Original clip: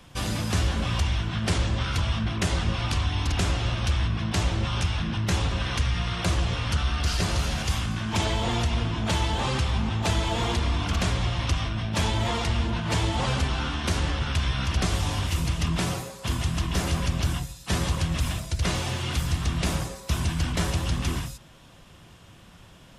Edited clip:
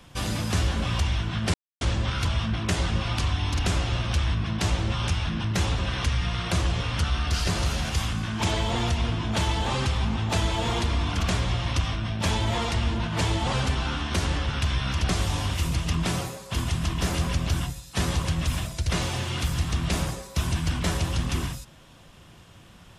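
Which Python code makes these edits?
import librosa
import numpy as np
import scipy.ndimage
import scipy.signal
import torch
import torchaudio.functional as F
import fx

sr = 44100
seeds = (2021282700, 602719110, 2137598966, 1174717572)

y = fx.edit(x, sr, fx.insert_silence(at_s=1.54, length_s=0.27), tone=tone)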